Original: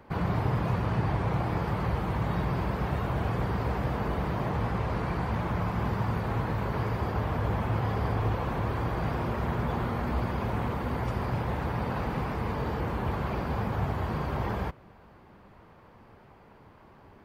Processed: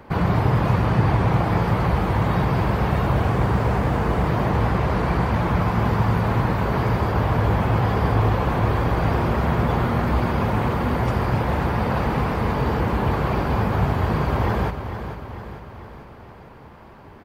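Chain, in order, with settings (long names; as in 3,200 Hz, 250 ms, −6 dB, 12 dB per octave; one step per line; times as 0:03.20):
0:03.25–0:04.27: running median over 9 samples
repeating echo 447 ms, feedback 56%, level −10 dB
level +8.5 dB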